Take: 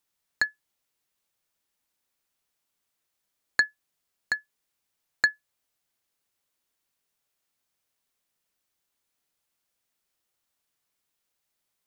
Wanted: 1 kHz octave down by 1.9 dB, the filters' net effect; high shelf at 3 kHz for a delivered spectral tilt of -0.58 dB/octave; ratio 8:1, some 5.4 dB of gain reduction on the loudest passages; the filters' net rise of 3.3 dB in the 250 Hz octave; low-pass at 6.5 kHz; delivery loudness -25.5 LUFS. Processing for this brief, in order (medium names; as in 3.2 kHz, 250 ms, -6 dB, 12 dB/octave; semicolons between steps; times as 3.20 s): low-pass 6.5 kHz; peaking EQ 250 Hz +4.5 dB; peaking EQ 1 kHz -3.5 dB; treble shelf 3 kHz +3.5 dB; compression 8:1, threshold -23 dBFS; trim +7.5 dB